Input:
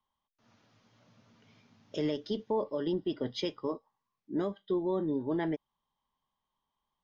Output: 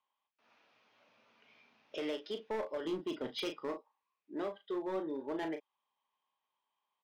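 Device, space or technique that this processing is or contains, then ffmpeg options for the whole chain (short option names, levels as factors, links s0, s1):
megaphone: -filter_complex "[0:a]asettb=1/sr,asplit=3[s0][s1][s2];[s0]atrim=end=2.854[s3];[s1]atrim=start=2.85:end=3.74,asetpts=PTS-STARTPTS,afade=t=in:d=0.004:c=qsin,afade=t=out:st=0.886:d=0.004:c=qsin,bass=f=250:g=13,treble=f=4000:g=3[s4];[s2]atrim=start=3.736[s5];[s3][s4]acrossfade=d=0.004:c1=hsin:c2=qsin[s6];[s6][s5]acrossfade=d=0.004:c1=qsin:c2=hsin,highpass=460,lowpass=3900,equalizer=f=2500:t=o:w=0.27:g=8.5,asoftclip=type=hard:threshold=0.0266,asplit=2[s7][s8];[s8]adelay=37,volume=0.398[s9];[s7][s9]amix=inputs=2:normalize=0,volume=0.891"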